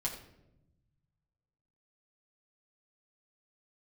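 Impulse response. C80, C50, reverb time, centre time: 9.5 dB, 7.5 dB, 0.90 s, 24 ms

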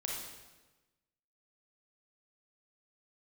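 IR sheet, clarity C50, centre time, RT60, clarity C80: 0.0 dB, 68 ms, 1.2 s, 3.5 dB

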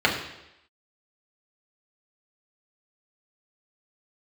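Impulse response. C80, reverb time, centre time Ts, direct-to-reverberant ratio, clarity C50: 8.5 dB, 0.85 s, 31 ms, −3.0 dB, 6.5 dB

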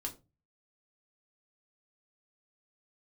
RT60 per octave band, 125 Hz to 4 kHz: 0.55, 0.40, 0.30, 0.25, 0.20, 0.20 seconds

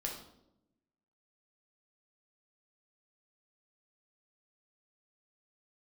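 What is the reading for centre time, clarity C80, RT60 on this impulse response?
32 ms, 8.5 dB, 0.80 s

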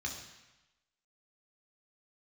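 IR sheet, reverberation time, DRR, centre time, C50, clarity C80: 1.0 s, −1.0 dB, 34 ms, 5.5 dB, 7.5 dB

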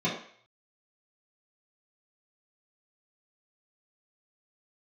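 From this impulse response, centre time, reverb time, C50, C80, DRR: 33 ms, 0.55 s, 5.0 dB, 9.0 dB, −8.5 dB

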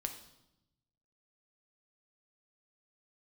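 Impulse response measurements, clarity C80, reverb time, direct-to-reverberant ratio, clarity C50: 12.0 dB, 0.85 s, 5.0 dB, 9.5 dB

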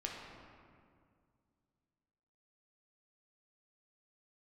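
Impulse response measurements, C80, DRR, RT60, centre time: 2.5 dB, −2.0 dB, 2.1 s, 93 ms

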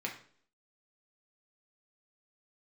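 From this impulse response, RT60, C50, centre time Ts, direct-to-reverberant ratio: 0.55 s, 8.5 dB, 20 ms, −1.5 dB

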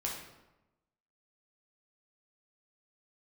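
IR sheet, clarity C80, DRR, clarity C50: 6.5 dB, −3.0 dB, 3.0 dB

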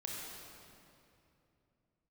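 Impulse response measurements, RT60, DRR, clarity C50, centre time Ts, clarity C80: 2.7 s, −3.0 dB, −1.5 dB, 148 ms, −0.5 dB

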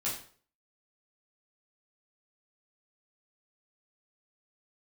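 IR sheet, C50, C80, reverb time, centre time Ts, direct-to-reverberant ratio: 5.5 dB, 10.0 dB, 0.50 s, 33 ms, −7.5 dB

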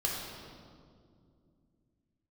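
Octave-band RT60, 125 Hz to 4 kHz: 3.7, 3.4, 2.7, 1.9, 1.4, 1.4 seconds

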